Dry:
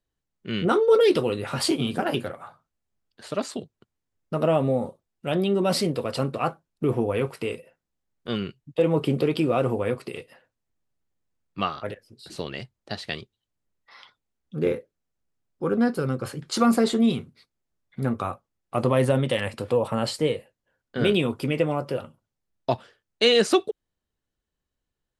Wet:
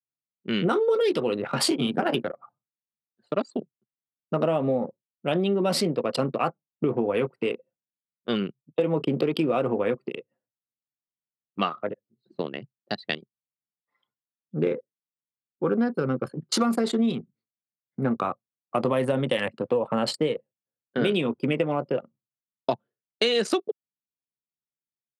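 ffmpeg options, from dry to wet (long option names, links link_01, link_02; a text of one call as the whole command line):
ffmpeg -i in.wav -filter_complex "[0:a]asettb=1/sr,asplit=3[link_01][link_02][link_03];[link_01]atrim=end=11.754[link_04];[link_02]atrim=start=11.75:end=12.62,asetpts=PTS-STARTPTS,afade=type=in:duration=0.004:curve=qsin,afade=type=out:start_time=0.866:duration=0.004:curve=qsin,highshelf=frequency=3100:gain=-5.5[link_05];[link_03]atrim=start=12.616[link_06];[link_04][link_05]acrossfade=duration=0.004:curve1=hsin:curve2=qsin[link_07];[link_07][link_06]acrossfade=duration=0.004:curve1=qsin:curve2=hsin,anlmdn=25.1,highpass=frequency=150:width=0.5412,highpass=frequency=150:width=1.3066,acompressor=threshold=-24dB:ratio=6,volume=4dB" out.wav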